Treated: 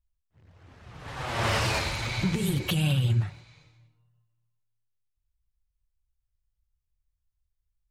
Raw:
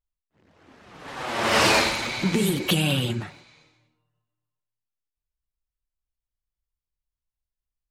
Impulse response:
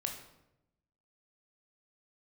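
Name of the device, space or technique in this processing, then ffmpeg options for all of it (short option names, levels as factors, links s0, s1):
car stereo with a boomy subwoofer: -af "lowshelf=f=160:t=q:w=1.5:g=12.5,alimiter=limit=0.211:level=0:latency=1:release=364,volume=0.708"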